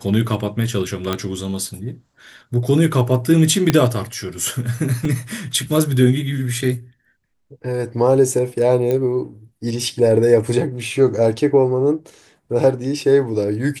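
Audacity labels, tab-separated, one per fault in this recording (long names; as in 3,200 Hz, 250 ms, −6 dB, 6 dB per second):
1.130000	1.130000	click −7 dBFS
3.700000	3.700000	click −1 dBFS
5.050000	5.050000	drop-out 2.4 ms
8.910000	8.910000	click −10 dBFS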